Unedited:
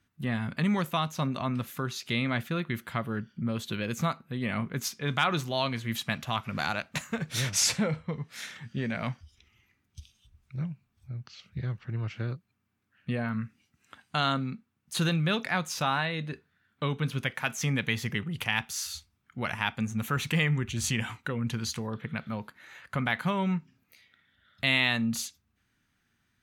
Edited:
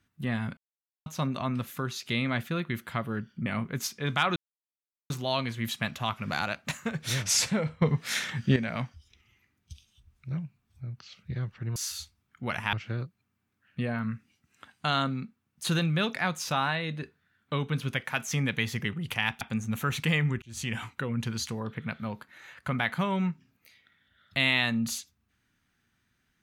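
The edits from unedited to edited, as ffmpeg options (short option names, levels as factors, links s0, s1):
-filter_complex "[0:a]asplit=11[s0][s1][s2][s3][s4][s5][s6][s7][s8][s9][s10];[s0]atrim=end=0.57,asetpts=PTS-STARTPTS,afade=t=out:st=0.566:d=0.004:c=hsin[s11];[s1]atrim=start=0.57:end=1.06,asetpts=PTS-STARTPTS,volume=0[s12];[s2]atrim=start=1.06:end=3.462,asetpts=PTS-STARTPTS,afade=t=in:d=0.004:c=hsin[s13];[s3]atrim=start=4.468:end=5.37,asetpts=PTS-STARTPTS,afade=t=out:st=0.898:d=0.004:c=hsin,apad=pad_dur=0.74[s14];[s4]atrim=start=5.37:end=8.092,asetpts=PTS-STARTPTS,afade=t=in:d=0.004:c=hsin[s15];[s5]atrim=start=8.088:end=8.832,asetpts=PTS-STARTPTS,volume=3.16[s16];[s6]atrim=start=8.828:end=12.032[s17];[s7]atrim=start=18.708:end=19.682[s18];[s8]atrim=start=12.028:end=18.712[s19];[s9]atrim=start=19.678:end=20.69,asetpts=PTS-STARTPTS,afade=t=out:st=1.008:d=0.004:c=hsin[s20];[s10]atrim=start=20.69,asetpts=PTS-STARTPTS,afade=t=in:d=0.39[s21];[s11][s12][s13]concat=n=3:v=0:a=1[s22];[s14][s15]concat=n=2:v=0:a=1[s23];[s22][s23]acrossfade=d=0.004:c1=hsin:c2=hsin[s24];[s24][s16]acrossfade=d=0.004:c1=hsin:c2=hsin[s25];[s25][s17]acrossfade=d=0.004:c1=hsin:c2=hsin[s26];[s26][s18]acrossfade=d=0.004:c1=hsin:c2=hsin[s27];[s27][s19]acrossfade=d=0.004:c1=hsin:c2=hsin[s28];[s20][s21]concat=n=2:v=0:a=1[s29];[s28][s29]acrossfade=d=0.004:c1=hsin:c2=hsin"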